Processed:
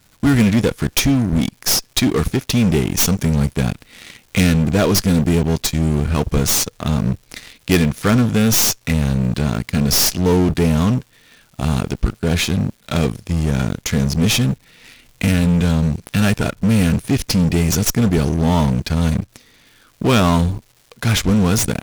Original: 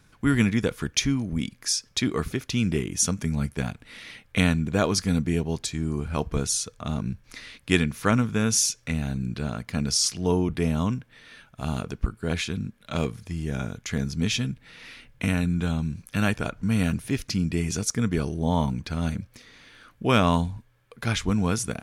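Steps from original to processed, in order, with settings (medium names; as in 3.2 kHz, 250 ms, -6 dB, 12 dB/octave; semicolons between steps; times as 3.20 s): tracing distortion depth 0.12 ms; in parallel at -3.5 dB: fuzz box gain 30 dB, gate -38 dBFS; on the sum: crackle 400 per s -40 dBFS; peaking EQ 1.4 kHz -4 dB 2.2 oct; trim +1.5 dB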